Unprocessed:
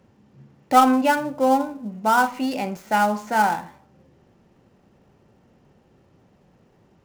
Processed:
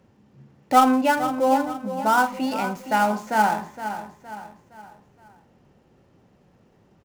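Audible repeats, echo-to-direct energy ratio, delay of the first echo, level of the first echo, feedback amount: 4, -10.0 dB, 465 ms, -11.0 dB, 43%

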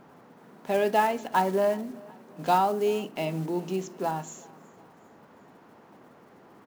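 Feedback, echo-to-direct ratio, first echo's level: 48%, -23.0 dB, -24.0 dB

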